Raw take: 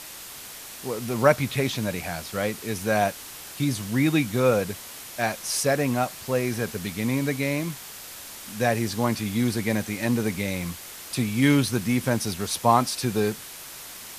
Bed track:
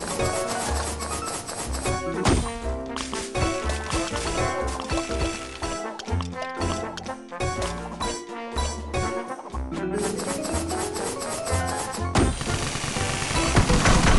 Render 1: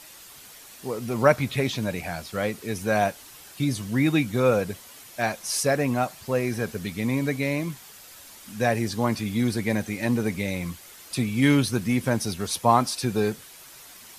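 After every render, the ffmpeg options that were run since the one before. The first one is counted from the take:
-af "afftdn=nr=8:nf=-41"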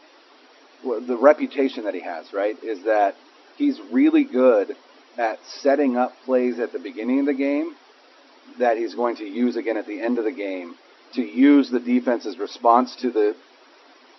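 -af "afftfilt=real='re*between(b*sr/4096,240,5800)':imag='im*between(b*sr/4096,240,5800)':win_size=4096:overlap=0.75,tiltshelf=f=1500:g=7.5"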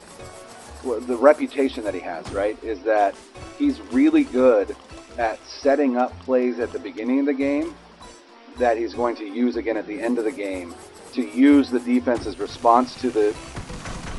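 -filter_complex "[1:a]volume=0.178[s0];[0:a][s0]amix=inputs=2:normalize=0"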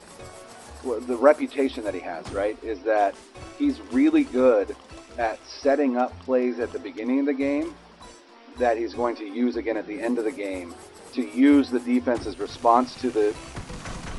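-af "volume=0.75"

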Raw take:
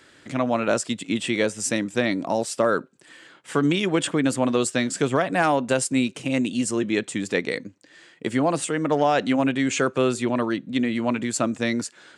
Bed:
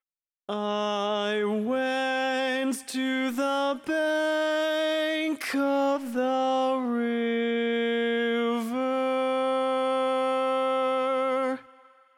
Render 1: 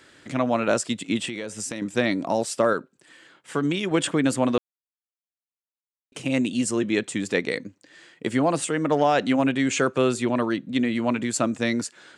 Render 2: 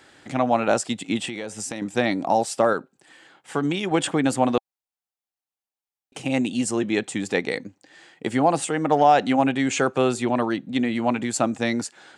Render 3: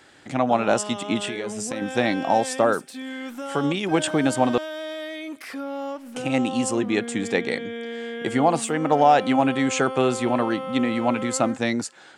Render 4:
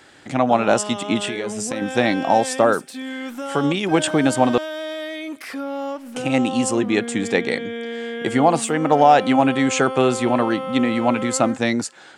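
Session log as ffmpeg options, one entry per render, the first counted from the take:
-filter_complex "[0:a]asettb=1/sr,asplit=3[s0][s1][s2];[s0]atrim=end=1.254[s3];[s1]atrim=start=1.25:end=1.82,asetpts=PTS-STARTPTS,afade=t=in:d=0.004:c=qsin,afade=t=out:st=0.566:d=0.004:c=qsin,acompressor=threshold=0.0447:ratio=12:attack=3.2:release=140:knee=1:detection=peak[s4];[s2]atrim=start=1.816[s5];[s3][s4]acrossfade=d=0.004:c1=hsin:c2=qsin[s6];[s6][s5]acrossfade=d=0.004:c1=qsin:c2=hsin,asplit=5[s7][s8][s9][s10][s11];[s7]atrim=end=2.732[s12];[s8]atrim=start=2.728:end=3.912,asetpts=PTS-STARTPTS,volume=0.668[s13];[s9]atrim=start=3.908:end=4.58,asetpts=PTS-STARTPTS,afade=t=out:st=0.668:d=0.004:c=hsin[s14];[s10]atrim=start=4.58:end=6.12,asetpts=PTS-STARTPTS,volume=0[s15];[s11]atrim=start=6.12,asetpts=PTS-STARTPTS,afade=t=in:d=0.004:c=hsin[s16];[s12][s13]acrossfade=d=0.004:c1=hsin:c2=hsin[s17];[s14][s15][s16]concat=n=3:v=0:a=1[s18];[s17][s18]acrossfade=d=0.004:c1=hsin:c2=hsin"
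-af "equalizer=f=790:w=5.1:g=11.5"
-filter_complex "[1:a]volume=0.473[s0];[0:a][s0]amix=inputs=2:normalize=0"
-af "volume=1.5,alimiter=limit=0.794:level=0:latency=1"

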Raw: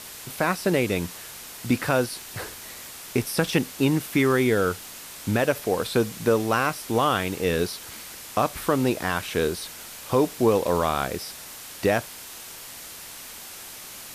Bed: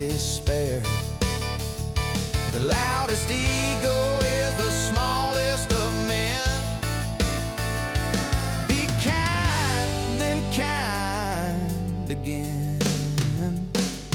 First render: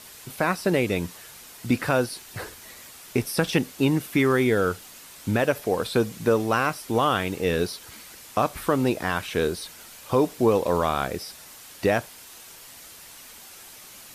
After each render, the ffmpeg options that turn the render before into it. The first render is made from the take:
-af "afftdn=nr=6:nf=-41"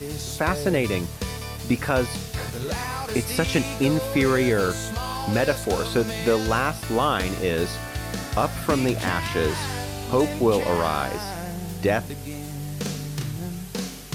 -filter_complex "[1:a]volume=0.531[s0];[0:a][s0]amix=inputs=2:normalize=0"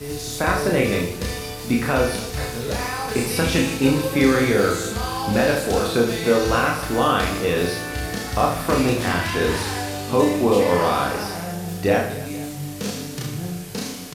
-filter_complex "[0:a]asplit=2[s0][s1];[s1]adelay=34,volume=0.562[s2];[s0][s2]amix=inputs=2:normalize=0,aecho=1:1:30|78|154.8|277.7|474.3:0.631|0.398|0.251|0.158|0.1"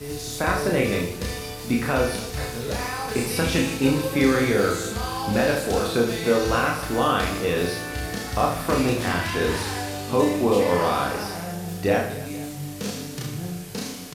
-af "volume=0.75"

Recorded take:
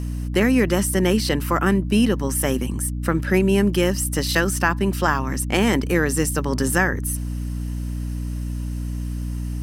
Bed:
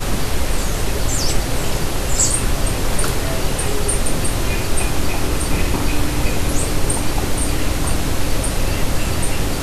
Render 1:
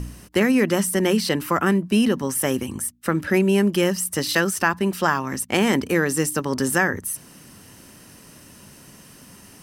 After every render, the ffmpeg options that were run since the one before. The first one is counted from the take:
-af "bandreject=f=60:t=h:w=4,bandreject=f=120:t=h:w=4,bandreject=f=180:t=h:w=4,bandreject=f=240:t=h:w=4,bandreject=f=300:t=h:w=4"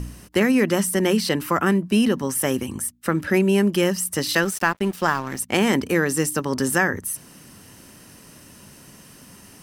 -filter_complex "[0:a]asettb=1/sr,asplit=3[s0][s1][s2];[s0]atrim=end=4.434[s3];[s1]atrim=start=4.43:end=5.39,asetpts=PTS-STARTPTS,afade=t=in:d=0.004:c=qsin,afade=t=out:st=0.956:d=0.004:c=qsin,aeval=exprs='sgn(val(0))*max(abs(val(0))-0.015,0)':c=same[s4];[s2]atrim=start=5.386[s5];[s3][s4]acrossfade=d=0.004:c1=hsin:c2=qsin[s6];[s6][s5]acrossfade=d=0.004:c1=qsin:c2=hsin"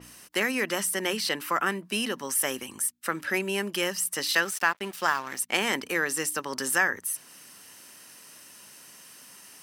-af "highpass=f=1300:p=1,adynamicequalizer=threshold=0.01:dfrequency=4400:dqfactor=0.7:tfrequency=4400:tqfactor=0.7:attack=5:release=100:ratio=0.375:range=2:mode=cutabove:tftype=highshelf"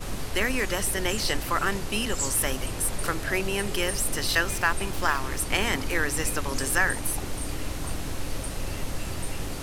-filter_complex "[1:a]volume=0.224[s0];[0:a][s0]amix=inputs=2:normalize=0"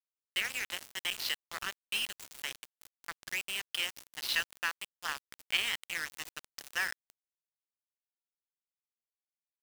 -af "bandpass=f=3100:t=q:w=1.9:csg=0,aeval=exprs='val(0)*gte(abs(val(0)),0.0251)':c=same"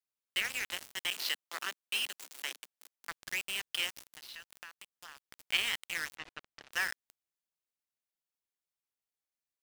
-filter_complex "[0:a]asettb=1/sr,asplit=3[s0][s1][s2];[s0]atrim=end=1.104[s3];[s1]atrim=start=1.1:end=3.09,asetpts=PTS-STARTPTS,afade=t=in:d=0.004:c=qsin,afade=t=out:st=1.986:d=0.004:c=qsin,highpass=f=240:w=0.5412,highpass=f=240:w=1.3066[s4];[s2]atrim=start=3.086[s5];[s3][s4]acrossfade=d=0.004:c1=hsin:c2=qsin[s6];[s6][s5]acrossfade=d=0.004:c1=qsin:c2=hsin,asettb=1/sr,asplit=3[s7][s8][s9];[s7]atrim=end=4.154[s10];[s8]atrim=start=4.15:end=5.43,asetpts=PTS-STARTPTS,afade=t=in:d=0.004:c=qsin,afade=t=out:st=1.276:d=0.004:c=qsin,acompressor=threshold=0.00316:ratio=3:attack=3.2:release=140:knee=1:detection=peak[s11];[s9]atrim=start=5.426[s12];[s10][s11]acrossfade=d=0.004:c1=hsin:c2=qsin[s13];[s13][s12]acrossfade=d=0.004:c1=qsin:c2=hsin,asettb=1/sr,asplit=3[s14][s15][s16];[s14]atrim=end=6.154[s17];[s15]atrim=start=6.15:end=6.72,asetpts=PTS-STARTPTS,afade=t=in:d=0.004:c=qsin,afade=t=out:st=0.566:d=0.004:c=qsin,lowpass=2900[s18];[s16]atrim=start=6.716[s19];[s17][s18]acrossfade=d=0.004:c1=hsin:c2=qsin[s20];[s20][s19]acrossfade=d=0.004:c1=qsin:c2=hsin"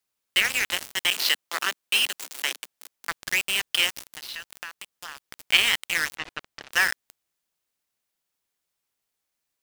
-af "volume=3.76"

